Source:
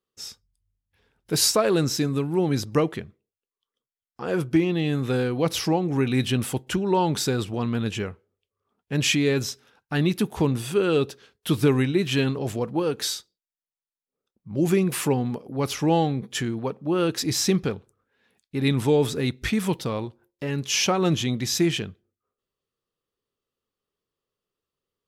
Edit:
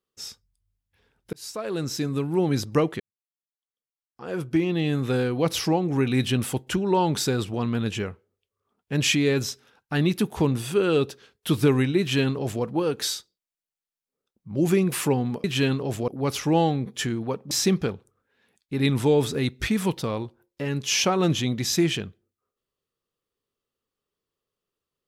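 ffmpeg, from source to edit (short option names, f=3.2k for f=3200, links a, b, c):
-filter_complex "[0:a]asplit=6[a][b][c][d][e][f];[a]atrim=end=1.33,asetpts=PTS-STARTPTS,afade=t=out:st=1.326:d=0.004:c=hsin[g];[b]atrim=start=1.33:end=3,asetpts=PTS-STARTPTS,afade=t=in:d=1,afade=t=out:st=1.666:d=0.004:c=hsin[h];[c]atrim=start=3:end=15.442,asetpts=PTS-STARTPTS,afade=t=in:d=1.8:c=qua[i];[d]atrim=start=11.998:end=12.642[j];[e]atrim=start=15.438:end=16.872[k];[f]atrim=start=17.328[l];[g][h][i]concat=n=3:v=0:a=1[m];[m][j]acrossfade=d=0.004:c1=hsin:c2=hsin[n];[n][k]acrossfade=d=0.004:c1=hsin:c2=hsin[o];[o][l]acrossfade=d=0.004:c1=hsin:c2=hsin"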